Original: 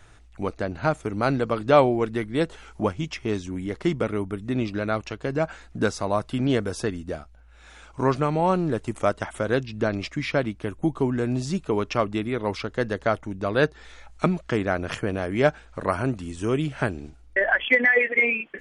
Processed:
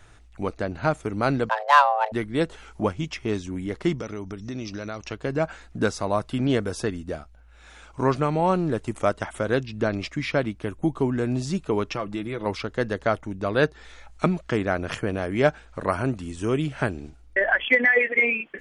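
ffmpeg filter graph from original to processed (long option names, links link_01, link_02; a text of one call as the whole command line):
ffmpeg -i in.wav -filter_complex "[0:a]asettb=1/sr,asplit=3[link_01][link_02][link_03];[link_01]atrim=end=1.494[link_04];[link_02]atrim=start=1.49:end=2.12,asetpts=PTS-STARTPTS,afade=type=in:duration=0.004:curve=qsin,afade=type=out:start_time=0.626:duration=0.004:curve=qsin,highshelf=frequency=2200:gain=4.5,adynamicsmooth=sensitivity=1.5:basefreq=2400,afreqshift=430[link_05];[link_03]atrim=start=2.116[link_06];[link_04][link_05]acrossfade=duration=0.004:curve1=hsin:curve2=qsin[link_07];[link_07][link_06]acrossfade=duration=0.004:curve1=qsin:curve2=hsin,asettb=1/sr,asplit=3[link_08][link_09][link_10];[link_08]atrim=end=3.984[link_11];[link_09]atrim=start=3.98:end=5.07,asetpts=PTS-STARTPTS,afade=type=in:duration=0.004:curve=qsin,afade=type=out:start_time=1.086:duration=0.004:curve=qsin,lowpass=frequency=5800:width_type=q:width=11,acompressor=threshold=-31dB:ratio=3:attack=3.2:release=140:knee=1:detection=peak[link_12];[link_10]atrim=start=5.066[link_13];[link_11][link_12]acrossfade=duration=0.004:curve1=hsin:curve2=qsin[link_14];[link_14][link_13]acrossfade=duration=0.004:curve1=qsin:curve2=hsin,asettb=1/sr,asplit=3[link_15][link_16][link_17];[link_15]atrim=end=11.904[link_18];[link_16]atrim=start=11.9:end=12.46,asetpts=PTS-STARTPTS,afade=type=in:duration=0.004:curve=qsin,afade=type=out:start_time=0.556:duration=0.004:curve=qsin,aecho=1:1:6:0.46,atrim=end_sample=24696,acompressor=threshold=-27dB:ratio=2.5:attack=3.2:release=140:knee=1:detection=peak[link_19];[link_17]atrim=start=12.456[link_20];[link_18][link_19]acrossfade=duration=0.004:curve1=hsin:curve2=qsin[link_21];[link_21][link_20]acrossfade=duration=0.004:curve1=qsin:curve2=hsin" out.wav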